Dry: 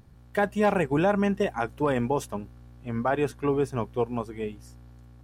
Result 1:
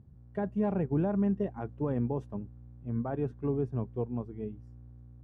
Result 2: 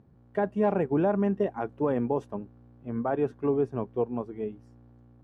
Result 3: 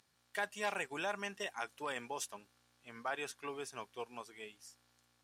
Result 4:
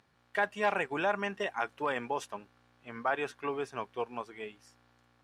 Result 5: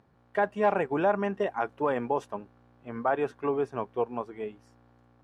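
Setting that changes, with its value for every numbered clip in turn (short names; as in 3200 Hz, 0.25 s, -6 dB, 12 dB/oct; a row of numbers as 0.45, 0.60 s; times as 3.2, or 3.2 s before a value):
band-pass, frequency: 110, 320, 6100, 2200, 840 Hz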